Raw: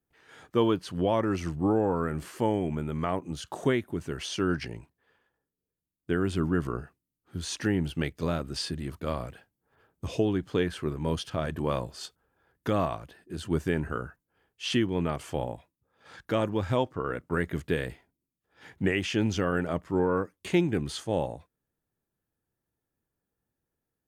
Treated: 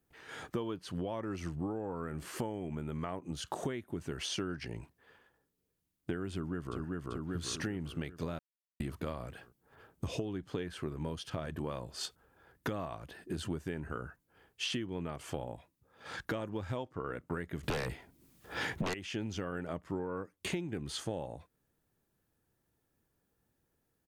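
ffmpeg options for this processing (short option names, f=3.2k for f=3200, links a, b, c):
-filter_complex "[0:a]asplit=2[a][b];[b]afade=t=in:st=6.32:d=0.01,afade=t=out:st=6.79:d=0.01,aecho=0:1:390|780|1170|1560|1950|2340|2730:0.530884|0.291986|0.160593|0.0883259|0.0485792|0.0267186|0.0146952[c];[a][c]amix=inputs=2:normalize=0,asettb=1/sr,asplit=3[d][e][f];[d]atrim=end=17.634[g];[e]atrim=start=17.63:end=18.94,asetpts=PTS-STARTPTS,afade=t=in:d=0.004:c=qsin,afade=t=out:st=1.306:d=0.004:c=qsin,aeval=exprs='0.251*sin(PI/2*5.62*val(0)/0.251)':c=same[h];[f]atrim=start=18.936[i];[g][h]acrossfade=d=0.004:c1=hsin:c2=qsin[j];[j][i]acrossfade=d=0.004:c1=qsin:c2=hsin,asplit=3[k][l][m];[k]atrim=end=8.39,asetpts=PTS-STARTPTS,afade=t=out:st=8.386:d=0.004:c=hsin[n];[l]atrim=start=8.39:end=8.8,asetpts=PTS-STARTPTS,volume=0[o];[m]atrim=start=8.8,asetpts=PTS-STARTPTS,afade=t=in:d=0.004:c=hsin[p];[n][o][p]concat=n=3:v=0:a=1,acompressor=threshold=-40dB:ratio=12,volume=6dB"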